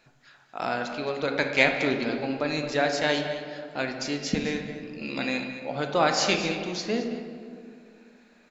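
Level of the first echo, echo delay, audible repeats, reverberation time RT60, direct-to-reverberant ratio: -13.0 dB, 0.218 s, 1, 2.3 s, 3.5 dB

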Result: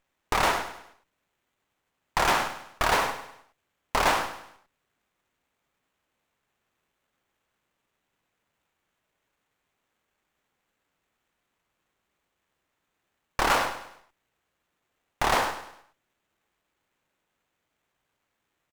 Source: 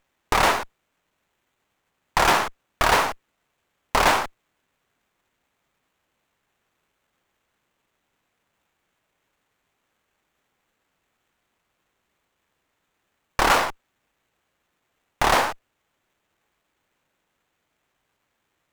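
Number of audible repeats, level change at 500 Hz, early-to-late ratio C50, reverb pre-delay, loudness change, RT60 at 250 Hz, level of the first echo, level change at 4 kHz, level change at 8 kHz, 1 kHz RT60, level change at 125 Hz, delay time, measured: 4, -4.5 dB, none, none, -4.5 dB, none, -11.0 dB, -4.5 dB, -4.5 dB, none, -4.5 dB, 0.101 s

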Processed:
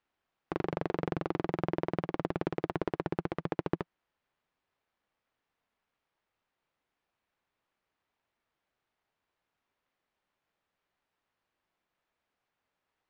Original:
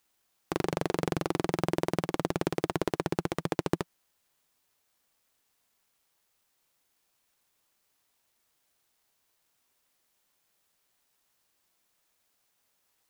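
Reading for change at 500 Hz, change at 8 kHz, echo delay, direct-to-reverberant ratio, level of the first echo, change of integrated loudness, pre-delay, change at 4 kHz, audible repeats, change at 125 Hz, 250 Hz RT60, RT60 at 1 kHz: -3.0 dB, under -20 dB, none, none, none, -3.0 dB, none, -10.5 dB, none, -3.0 dB, none, none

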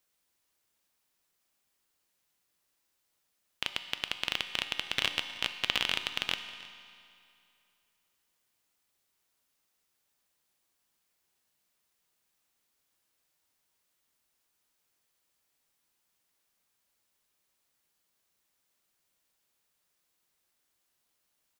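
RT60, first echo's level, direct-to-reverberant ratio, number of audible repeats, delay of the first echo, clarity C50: 2.5 s, -20.5 dB, 7.5 dB, 1, 0.315 s, 9.0 dB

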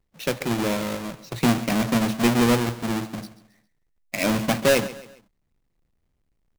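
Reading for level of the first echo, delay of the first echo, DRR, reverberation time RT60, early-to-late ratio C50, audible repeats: -16.0 dB, 0.135 s, none, none, none, 3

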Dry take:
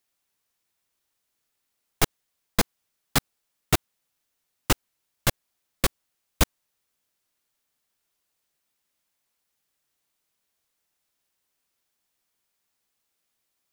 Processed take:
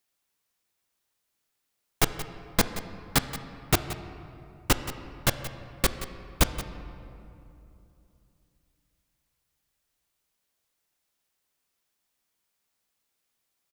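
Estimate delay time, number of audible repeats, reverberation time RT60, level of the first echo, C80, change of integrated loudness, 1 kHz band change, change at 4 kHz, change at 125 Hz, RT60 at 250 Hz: 0.176 s, 1, 2.8 s, -14.0 dB, 10.0 dB, -2.0 dB, -0.5 dB, -0.5 dB, -0.5 dB, 3.4 s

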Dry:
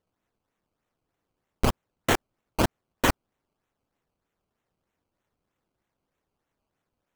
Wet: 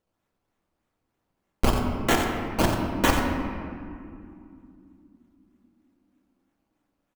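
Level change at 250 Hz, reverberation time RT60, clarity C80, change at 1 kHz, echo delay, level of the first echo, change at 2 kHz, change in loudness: +5.5 dB, 2.6 s, 3.0 dB, +3.5 dB, 89 ms, -8.5 dB, +2.5 dB, +2.5 dB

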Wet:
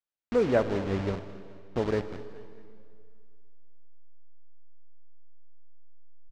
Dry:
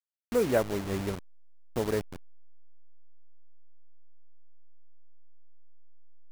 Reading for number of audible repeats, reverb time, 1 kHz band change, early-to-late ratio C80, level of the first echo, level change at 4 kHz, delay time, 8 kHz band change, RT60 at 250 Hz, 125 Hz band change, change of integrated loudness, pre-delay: 3, 2.2 s, +1.5 dB, 11.5 dB, -18.0 dB, -1.5 dB, 0.213 s, under -10 dB, 2.2 s, +2.5 dB, +1.5 dB, 33 ms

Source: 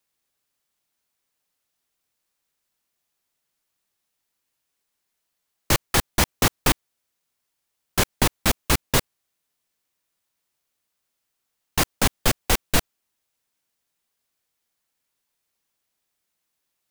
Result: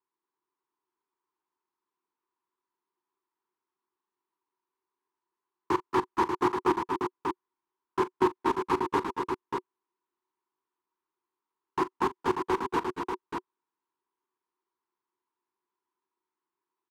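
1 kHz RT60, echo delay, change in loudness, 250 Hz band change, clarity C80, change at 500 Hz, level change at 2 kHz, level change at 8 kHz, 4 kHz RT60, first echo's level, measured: none, 41 ms, -7.5 dB, -2.0 dB, none, +0.5 dB, -10.5 dB, -26.0 dB, none, -16.0 dB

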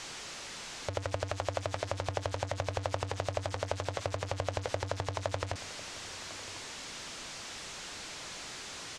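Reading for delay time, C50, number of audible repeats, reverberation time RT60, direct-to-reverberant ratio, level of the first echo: 1.05 s, none, 1, none, none, -19.0 dB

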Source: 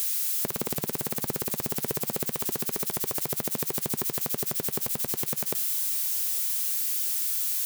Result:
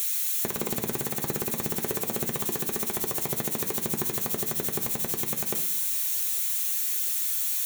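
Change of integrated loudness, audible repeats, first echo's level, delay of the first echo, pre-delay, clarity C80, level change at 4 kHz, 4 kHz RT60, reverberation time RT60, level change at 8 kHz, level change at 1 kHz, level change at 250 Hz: +0.5 dB, none, none, none, 3 ms, 15.0 dB, 0.0 dB, 0.85 s, 0.65 s, +0.5 dB, +2.0 dB, +2.0 dB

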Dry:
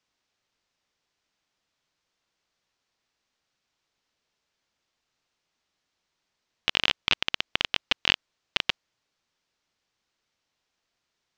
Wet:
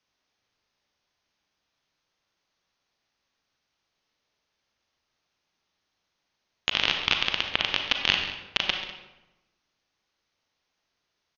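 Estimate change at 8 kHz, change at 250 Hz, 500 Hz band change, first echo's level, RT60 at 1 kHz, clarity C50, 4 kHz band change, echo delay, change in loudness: +0.5 dB, +1.5 dB, +2.0 dB, -14.0 dB, 0.95 s, 4.5 dB, +1.5 dB, 0.136 s, +1.5 dB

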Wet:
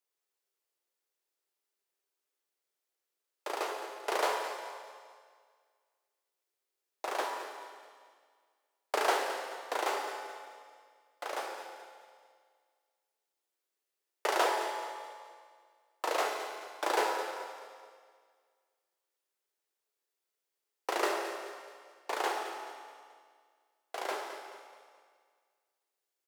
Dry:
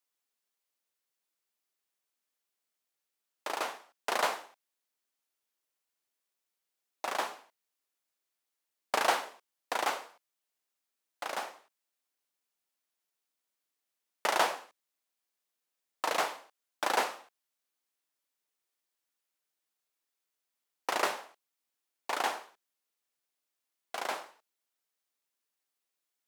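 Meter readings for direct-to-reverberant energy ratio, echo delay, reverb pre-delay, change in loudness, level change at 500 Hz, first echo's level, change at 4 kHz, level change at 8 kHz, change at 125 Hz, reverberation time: 1.5 dB, 0.215 s, 9 ms, -1.5 dB, +3.0 dB, -12.5 dB, -2.0 dB, -2.0 dB, n/a, 1.9 s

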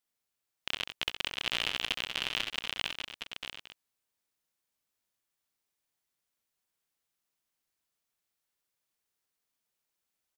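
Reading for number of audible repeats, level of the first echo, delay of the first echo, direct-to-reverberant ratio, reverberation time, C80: 4, -7.5 dB, 66 ms, none, none, none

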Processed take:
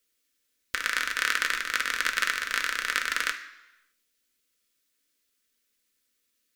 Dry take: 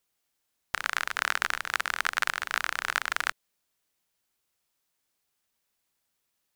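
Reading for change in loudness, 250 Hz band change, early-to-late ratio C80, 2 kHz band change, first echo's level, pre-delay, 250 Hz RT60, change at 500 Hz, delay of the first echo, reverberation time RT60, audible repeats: +2.0 dB, +3.5 dB, 13.5 dB, +2.5 dB, none, 3 ms, 0.85 s, -0.5 dB, none, 1.0 s, none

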